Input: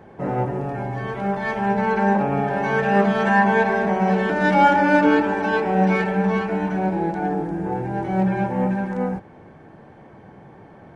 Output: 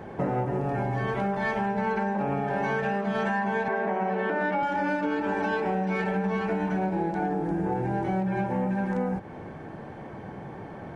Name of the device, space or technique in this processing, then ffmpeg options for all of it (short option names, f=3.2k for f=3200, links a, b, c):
serial compression, leveller first: -filter_complex "[0:a]asettb=1/sr,asplit=3[a][b][c];[a]atrim=end=3.684[d];[b]atrim=start=3.68:end=4.63,asetpts=PTS-STARTPTS,afade=t=in:d=0.004:c=qsin,afade=t=out:st=0.946:d=0.004:c=qsin,acrossover=split=220 2900:gain=0.2 1 0.2[e][f][g];[e][f][g]amix=inputs=3:normalize=0[h];[c]atrim=start=4.626[i];[d][h]acrossfade=d=0.004:c1=hsin:c2=qsin[j];[j][i]acrossfade=d=0.004:c1=qsin:c2=hsin,acompressor=threshold=-19dB:ratio=6,acompressor=threshold=-30dB:ratio=5,volume=5dB"